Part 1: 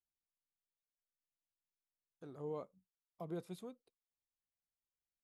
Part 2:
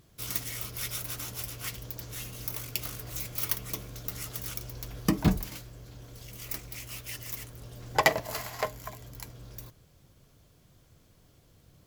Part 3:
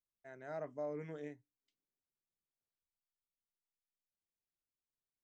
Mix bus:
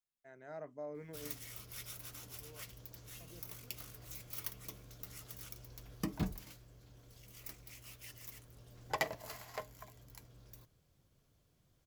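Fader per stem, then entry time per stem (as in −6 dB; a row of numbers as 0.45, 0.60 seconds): −16.0, −12.5, −3.5 decibels; 0.00, 0.95, 0.00 seconds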